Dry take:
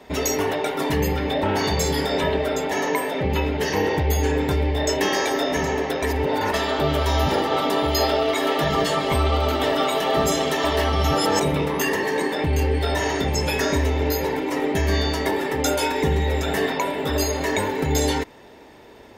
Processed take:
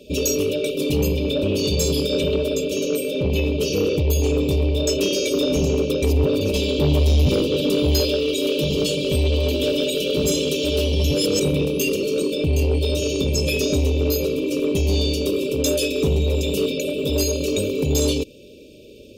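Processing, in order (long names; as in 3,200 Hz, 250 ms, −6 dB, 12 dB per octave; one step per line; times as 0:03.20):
0:05.33–0:08.01: low-shelf EQ 230 Hz +7.5 dB
brick-wall band-stop 620–2,300 Hz
soft clipping −14.5 dBFS, distortion −18 dB
level +3.5 dB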